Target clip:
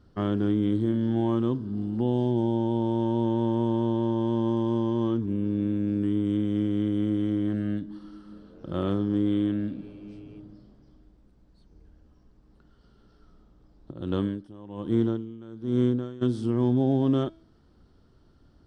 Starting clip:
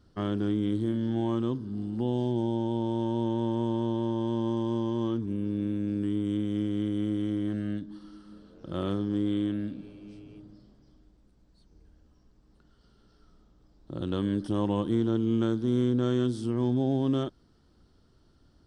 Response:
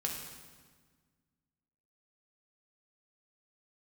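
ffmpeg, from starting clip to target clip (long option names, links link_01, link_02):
-filter_complex "[0:a]highshelf=frequency=3900:gain=-9.5,bandreject=frequency=326.3:width_type=h:width=4,bandreject=frequency=652.6:width_type=h:width=4,bandreject=frequency=978.9:width_type=h:width=4,bandreject=frequency=1305.2:width_type=h:width=4,bandreject=frequency=1631.5:width_type=h:width=4,bandreject=frequency=1957.8:width_type=h:width=4,bandreject=frequency=2284.1:width_type=h:width=4,bandreject=frequency=2610.4:width_type=h:width=4,bandreject=frequency=2936.7:width_type=h:width=4,bandreject=frequency=3263:width_type=h:width=4,bandreject=frequency=3589.3:width_type=h:width=4,bandreject=frequency=3915.6:width_type=h:width=4,bandreject=frequency=4241.9:width_type=h:width=4,bandreject=frequency=4568.2:width_type=h:width=4,bandreject=frequency=4894.5:width_type=h:width=4,bandreject=frequency=5220.8:width_type=h:width=4,bandreject=frequency=5547.1:width_type=h:width=4,bandreject=frequency=5873.4:width_type=h:width=4,bandreject=frequency=6199.7:width_type=h:width=4,bandreject=frequency=6526:width_type=h:width=4,bandreject=frequency=6852.3:width_type=h:width=4,bandreject=frequency=7178.6:width_type=h:width=4,bandreject=frequency=7504.9:width_type=h:width=4,bandreject=frequency=7831.2:width_type=h:width=4,bandreject=frequency=8157.5:width_type=h:width=4,bandreject=frequency=8483.8:width_type=h:width=4,bandreject=frequency=8810.1:width_type=h:width=4,bandreject=frequency=9136.4:width_type=h:width=4,asplit=3[link_01][link_02][link_03];[link_01]afade=type=out:start_time=13.91:duration=0.02[link_04];[link_02]aeval=exprs='val(0)*pow(10,-21*(0.5-0.5*cos(2*PI*1.2*n/s))/20)':channel_layout=same,afade=type=in:start_time=13.91:duration=0.02,afade=type=out:start_time=16.21:duration=0.02[link_05];[link_03]afade=type=in:start_time=16.21:duration=0.02[link_06];[link_04][link_05][link_06]amix=inputs=3:normalize=0,volume=3.5dB"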